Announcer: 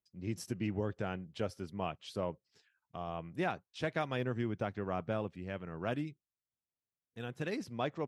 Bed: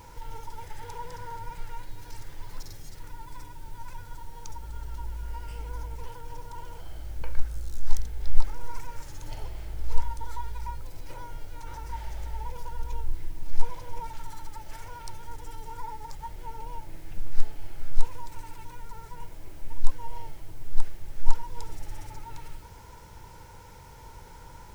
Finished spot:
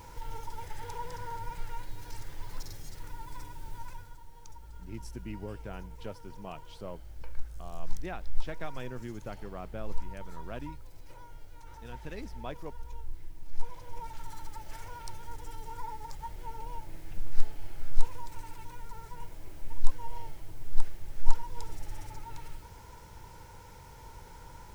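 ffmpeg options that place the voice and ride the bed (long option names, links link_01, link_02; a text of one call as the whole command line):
ffmpeg -i stem1.wav -i stem2.wav -filter_complex "[0:a]adelay=4650,volume=-5.5dB[link_01];[1:a]volume=7dB,afade=type=out:start_time=3.76:duration=0.41:silence=0.354813,afade=type=in:start_time=13.52:duration=0.89:silence=0.421697[link_02];[link_01][link_02]amix=inputs=2:normalize=0" out.wav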